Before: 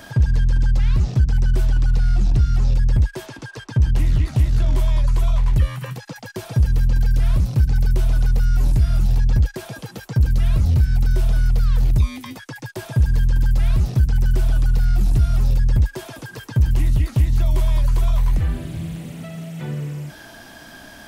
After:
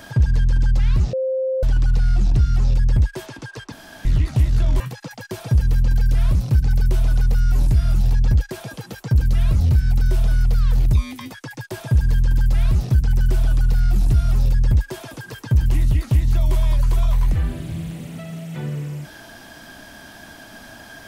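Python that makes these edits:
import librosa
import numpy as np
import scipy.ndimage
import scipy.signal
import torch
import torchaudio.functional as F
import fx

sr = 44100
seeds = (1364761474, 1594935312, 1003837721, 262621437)

y = fx.edit(x, sr, fx.bleep(start_s=1.13, length_s=0.5, hz=524.0, db=-18.5),
    fx.room_tone_fill(start_s=3.72, length_s=0.33),
    fx.cut(start_s=4.8, length_s=1.05), tone=tone)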